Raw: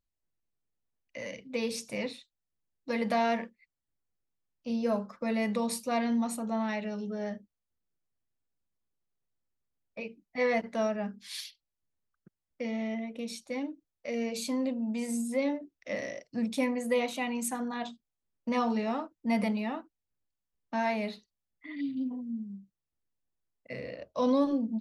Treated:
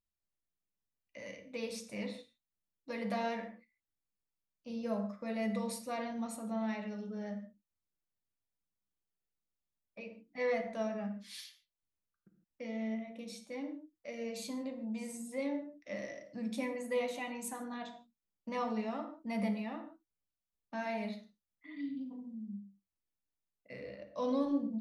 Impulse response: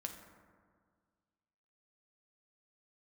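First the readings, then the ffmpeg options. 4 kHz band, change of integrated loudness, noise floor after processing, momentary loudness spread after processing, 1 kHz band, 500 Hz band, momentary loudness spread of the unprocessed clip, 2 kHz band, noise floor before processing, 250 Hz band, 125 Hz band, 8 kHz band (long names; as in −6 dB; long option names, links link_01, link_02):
−7.5 dB, −6.5 dB, below −85 dBFS, 14 LU, −7.5 dB, −6.0 dB, 14 LU, −7.0 dB, below −85 dBFS, −6.5 dB, can't be measured, −7.5 dB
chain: -filter_complex "[1:a]atrim=start_sample=2205,afade=type=out:start_time=0.21:duration=0.01,atrim=end_sample=9702[link_01];[0:a][link_01]afir=irnorm=-1:irlink=0,volume=-4.5dB"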